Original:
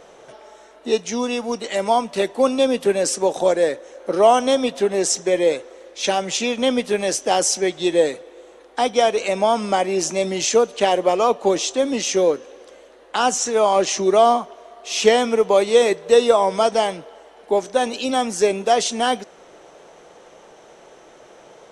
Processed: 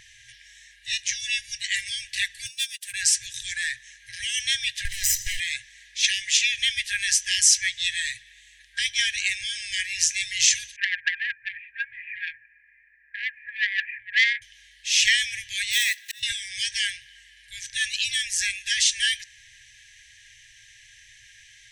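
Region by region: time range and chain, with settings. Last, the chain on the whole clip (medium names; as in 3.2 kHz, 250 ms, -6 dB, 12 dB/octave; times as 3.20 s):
2.46–2.94 s: differentiator + waveshaping leveller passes 2 + upward expansion 2.5:1, over -44 dBFS
4.85–5.40 s: comb filter that takes the minimum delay 1 ms + treble shelf 3.5 kHz +9 dB + compression 5:1, threshold -22 dBFS
10.76–14.42 s: rippled Chebyshev low-pass 2.5 kHz, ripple 9 dB + bass shelf 130 Hz -8.5 dB + transformer saturation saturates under 1.9 kHz
15.71–16.23 s: block-companded coder 5-bit + high-pass 770 Hz + slow attack 750 ms
whole clip: FFT band-reject 120–1600 Hz; peaking EQ 1.1 kHz +4 dB 1.6 oct; trim +3.5 dB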